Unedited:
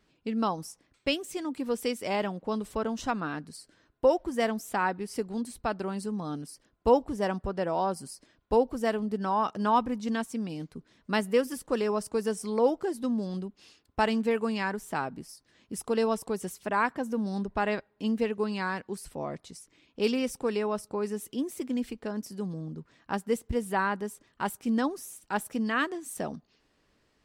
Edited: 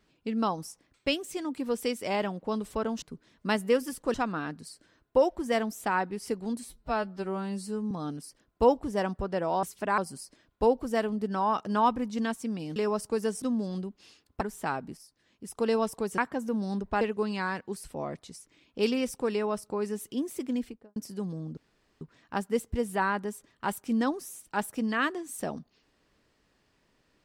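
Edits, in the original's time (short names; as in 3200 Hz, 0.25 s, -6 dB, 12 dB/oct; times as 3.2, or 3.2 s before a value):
5.53–6.16 stretch 2×
10.66–11.78 move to 3.02
12.44–13.01 cut
14–14.7 cut
15.26–15.86 gain -5.5 dB
16.47–16.82 move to 7.88
17.65–18.22 cut
21.73–22.17 studio fade out
22.78 insert room tone 0.44 s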